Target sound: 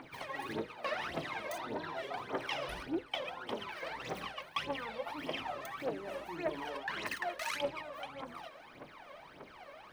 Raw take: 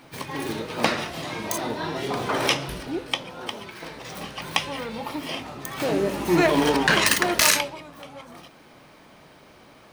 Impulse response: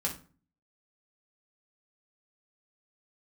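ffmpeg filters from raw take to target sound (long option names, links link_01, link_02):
-af "bass=frequency=250:gain=-12,treble=frequency=4000:gain=-13,areverse,acompressor=threshold=-36dB:ratio=8,areverse,aphaser=in_gain=1:out_gain=1:delay=1.9:decay=0.75:speed=1.7:type=triangular,volume=-3.5dB"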